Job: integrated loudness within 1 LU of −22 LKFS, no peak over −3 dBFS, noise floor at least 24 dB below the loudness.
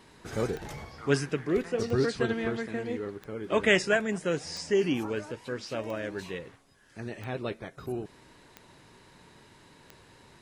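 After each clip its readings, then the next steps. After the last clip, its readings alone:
number of clicks 8; integrated loudness −30.5 LKFS; sample peak −8.5 dBFS; target loudness −22.0 LKFS
→ click removal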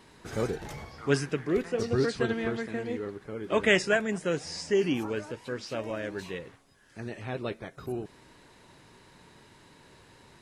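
number of clicks 0; integrated loudness −30.5 LKFS; sample peak −8.5 dBFS; target loudness −22.0 LKFS
→ level +8.5 dB
brickwall limiter −3 dBFS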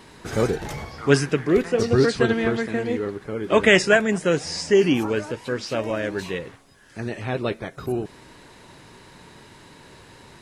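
integrated loudness −22.5 LKFS; sample peak −3.0 dBFS; background noise floor −49 dBFS

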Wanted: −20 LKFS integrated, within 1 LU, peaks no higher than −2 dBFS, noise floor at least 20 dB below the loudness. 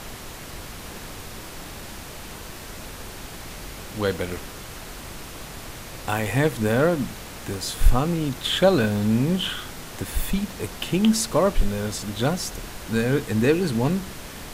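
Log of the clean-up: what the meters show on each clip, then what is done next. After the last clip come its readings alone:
background noise floor −39 dBFS; target noise floor −44 dBFS; integrated loudness −24.0 LKFS; sample peak −4.5 dBFS; target loudness −20.0 LKFS
→ noise reduction from a noise print 6 dB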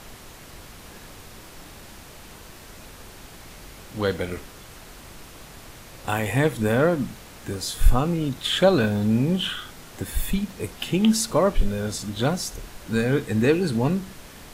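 background noise floor −44 dBFS; integrated loudness −24.0 LKFS; sample peak −5.0 dBFS; target loudness −20.0 LKFS
→ level +4 dB
brickwall limiter −2 dBFS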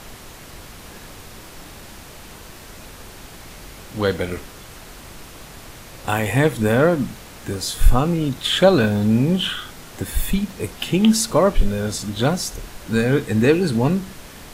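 integrated loudness −20.0 LKFS; sample peak −2.0 dBFS; background noise floor −40 dBFS

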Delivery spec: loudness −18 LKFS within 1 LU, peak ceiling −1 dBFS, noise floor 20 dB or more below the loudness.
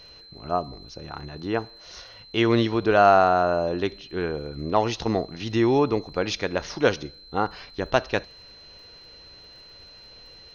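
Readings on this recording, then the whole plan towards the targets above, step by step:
crackle rate 38 per second; interfering tone 4,100 Hz; level of the tone −46 dBFS; integrated loudness −24.0 LKFS; sample peak −4.5 dBFS; target loudness −18.0 LKFS
→ click removal
notch filter 4,100 Hz, Q 30
level +6 dB
brickwall limiter −1 dBFS

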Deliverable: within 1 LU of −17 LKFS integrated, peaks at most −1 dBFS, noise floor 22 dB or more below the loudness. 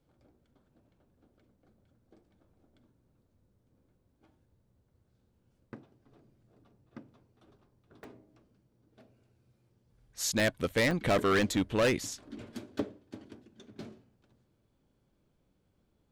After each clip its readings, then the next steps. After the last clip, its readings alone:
share of clipped samples 0.7%; peaks flattened at −22.0 dBFS; number of dropouts 7; longest dropout 1.6 ms; integrated loudness −30.5 LKFS; sample peak −22.0 dBFS; target loudness −17.0 LKFS
→ clipped peaks rebuilt −22 dBFS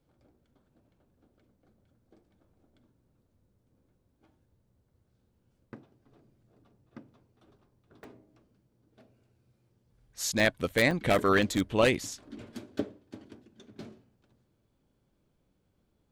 share of clipped samples 0.0%; number of dropouts 7; longest dropout 1.6 ms
→ repair the gap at 0:08.04/0:10.40/0:10.91/0:11.42/0:12.07/0:12.79/0:13.81, 1.6 ms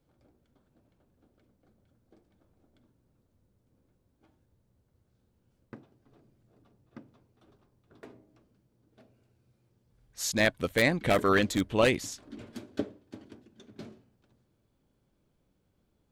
number of dropouts 0; integrated loudness −27.5 LKFS; sample peak −13.0 dBFS; target loudness −17.0 LKFS
→ level +10.5 dB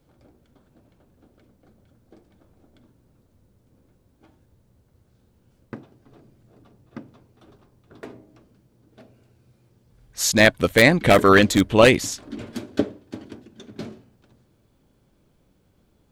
integrated loudness −17.5 LKFS; sample peak −2.5 dBFS; background noise floor −63 dBFS

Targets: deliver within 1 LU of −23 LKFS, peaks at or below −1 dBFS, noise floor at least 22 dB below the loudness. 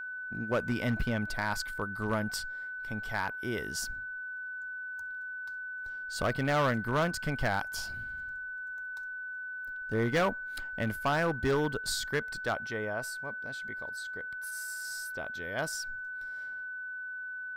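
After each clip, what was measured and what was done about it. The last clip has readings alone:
share of clipped samples 0.9%; peaks flattened at −22.5 dBFS; interfering tone 1,500 Hz; level of the tone −37 dBFS; integrated loudness −34.0 LKFS; sample peak −22.5 dBFS; target loudness −23.0 LKFS
→ clipped peaks rebuilt −22.5 dBFS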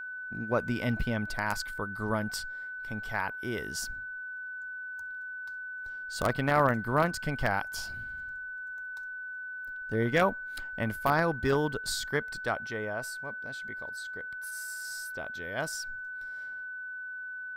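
share of clipped samples 0.0%; interfering tone 1,500 Hz; level of the tone −37 dBFS
→ notch filter 1,500 Hz, Q 30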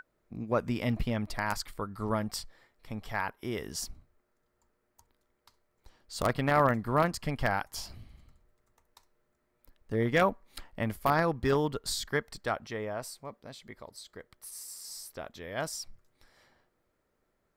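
interfering tone none found; integrated loudness −32.0 LKFS; sample peak −13.0 dBFS; target loudness −23.0 LKFS
→ level +9 dB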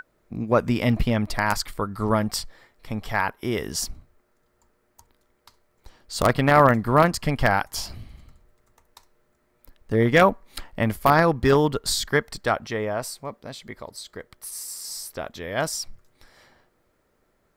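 integrated loudness −23.0 LKFS; sample peak −4.0 dBFS; background noise floor −68 dBFS

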